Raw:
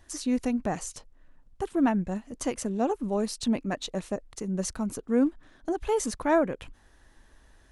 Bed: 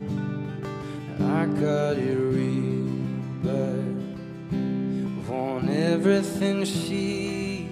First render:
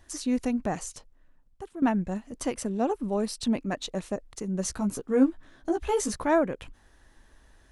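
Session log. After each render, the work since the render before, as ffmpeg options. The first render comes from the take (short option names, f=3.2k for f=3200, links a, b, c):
-filter_complex "[0:a]asettb=1/sr,asplit=3[a][b][c];[a]atrim=end=2.384[d];[b]atrim=start=2.38:end=3.44,asetpts=PTS-STARTPTS,afade=t=in:d=0.004:c=qsin,afade=t=out:st=1.056:d=0.004:c=qsin,bandreject=f=6.7k:w=9.6[e];[c]atrim=start=3.436[f];[d][e]acrossfade=d=0.004:c1=hsin:c2=qsin[g];[g][f]acrossfade=d=0.004:c1=qsin:c2=hsin,asettb=1/sr,asplit=3[h][i][j];[h]atrim=end=4.644[k];[i]atrim=start=4.64:end=6.27,asetpts=PTS-STARTPTS,afade=t=in:d=0.004:c=qsin,afade=t=out:st=1.626:d=0.004:c=qsin,asplit=2[l][m];[m]adelay=15,volume=-3.5dB[n];[l][n]amix=inputs=2:normalize=0,atrim=end_sample=71883[o];[j]atrim=start=6.266[p];[k][o]acrossfade=d=0.004:c1=hsin:c2=qsin[q];[q][p]acrossfade=d=0.004:c1=qsin:c2=hsin,asplit=2[r][s];[r]atrim=end=1.82,asetpts=PTS-STARTPTS,afade=t=out:st=0.76:d=1.06:silence=0.223872[t];[s]atrim=start=1.82,asetpts=PTS-STARTPTS,afade=t=in:d=0.004:c=hsin:silence=0.223872[u];[t][u]concat=n=2:v=0:a=1"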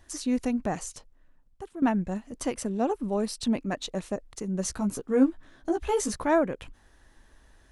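-af anull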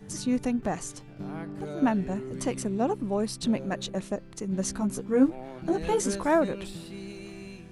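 -filter_complex "[1:a]volume=-13.5dB[a];[0:a][a]amix=inputs=2:normalize=0"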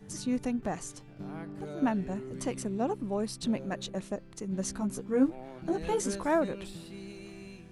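-af "volume=-4dB"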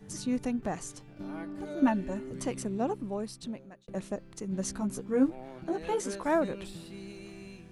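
-filter_complex "[0:a]asettb=1/sr,asplit=3[a][b][c];[a]atrim=end=1.164[d];[b]atrim=start=1.16:end=2.31,asetpts=PTS-STARTPTS,afade=t=in:d=0.004:c=qsin,afade=t=out:st=1.146:d=0.004:c=qsin,aecho=1:1:3.4:0.65,atrim=end_sample=50715[e];[c]atrim=start=2.306[f];[d][e]acrossfade=d=0.004:c1=hsin:c2=qsin[g];[g][f]acrossfade=d=0.004:c1=qsin:c2=hsin,asettb=1/sr,asplit=3[h][i][j];[h]atrim=end=5.644[k];[i]atrim=start=5.64:end=6.26,asetpts=PTS-STARTPTS,afade=t=in:d=0.004:c=qsin,afade=t=out:st=0.616:d=0.004:c=qsin,bass=f=250:g=-8,treble=f=4k:g=-4[l];[j]atrim=start=6.256[m];[k][l]acrossfade=d=0.004:c1=hsin:c2=qsin[n];[n][m]acrossfade=d=0.004:c1=qsin:c2=hsin,asplit=2[o][p];[o]atrim=end=3.88,asetpts=PTS-STARTPTS,afade=t=out:st=2.87:d=1.01[q];[p]atrim=start=3.88,asetpts=PTS-STARTPTS,afade=t=in:d=0.004:c=hsin[r];[q][r]concat=n=2:v=0:a=1"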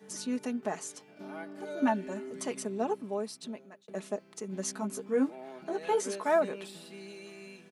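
-af "highpass=310,aecho=1:1:4.7:0.55"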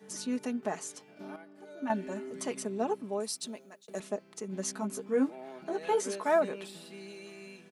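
-filter_complex "[0:a]asettb=1/sr,asplit=3[a][b][c];[a]atrim=end=3.204[d];[b]atrim=start=3.2:end=4,asetpts=PTS-STARTPTS,afade=t=in:d=0.004:c=qsin,afade=t=out:st=0.796:d=0.004:c=qsin,bass=f=250:g=-4,treble=f=4k:g=11[e];[c]atrim=start=3.996[f];[d][e]acrossfade=d=0.004:c1=hsin:c2=qsin[g];[g][f]acrossfade=d=0.004:c1=qsin:c2=hsin,asplit=3[h][i][j];[h]atrim=end=1.362[k];[i]atrim=start=1.358:end=1.902,asetpts=PTS-STARTPTS,volume=-9.5dB[l];[j]atrim=start=1.898[m];[k][l]acrossfade=d=0.004:c1=hsin:c2=hsin[n];[n][m]acrossfade=d=0.004:c1=hsin:c2=hsin"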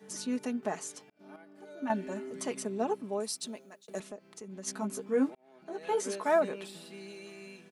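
-filter_complex "[0:a]asplit=3[a][b][c];[a]afade=t=out:st=4.02:d=0.02[d];[b]acompressor=threshold=-46dB:ratio=2:attack=3.2:release=140:knee=1:detection=peak,afade=t=in:st=4.02:d=0.02,afade=t=out:st=4.66:d=0.02[e];[c]afade=t=in:st=4.66:d=0.02[f];[d][e][f]amix=inputs=3:normalize=0,asplit=3[g][h][i];[g]atrim=end=1.1,asetpts=PTS-STARTPTS,afade=t=out:st=1.096:d=0.004:c=hsin[j];[h]atrim=start=1.1:end=5.35,asetpts=PTS-STARTPTS,afade=t=in:d=0.46,afade=t=out:st=4.246:d=0.004:c=hsin[k];[i]atrim=start=5.35,asetpts=PTS-STARTPTS,afade=t=in:d=0.75[l];[j][k][l]concat=n=3:v=0:a=1"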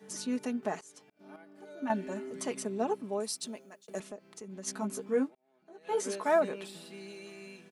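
-filter_complex "[0:a]asettb=1/sr,asplit=3[a][b][c];[a]atrim=end=3.444[d];[b]atrim=start=3.44:end=4.05,asetpts=PTS-STARTPTS,afade=t=in:d=0.004:c=qsin,afade=t=out:st=0.606:d=0.004:c=qsin,bandreject=f=3.9k:w=11[e];[c]atrim=start=4.046[f];[d][e]acrossfade=d=0.004:c1=hsin:c2=qsin[g];[g][f]acrossfade=d=0.004:c1=qsin:c2=hsin,asplit=4[h][i][j][k];[h]atrim=end=0.81,asetpts=PTS-STARTPTS,afade=t=out:st=0.806:d=0.004:c=hsin:silence=0.0891251[l];[i]atrim=start=0.81:end=5.29,asetpts=PTS-STARTPTS,afade=t=in:d=0.57:c=qsin:silence=0.0891251,afade=t=out:st=4.36:d=0.12:silence=0.237137[m];[j]atrim=start=5.29:end=5.84,asetpts=PTS-STARTPTS,volume=-12.5dB[n];[k]atrim=start=5.84,asetpts=PTS-STARTPTS,afade=t=in:d=0.12:silence=0.237137[o];[l][m][n][o]concat=n=4:v=0:a=1"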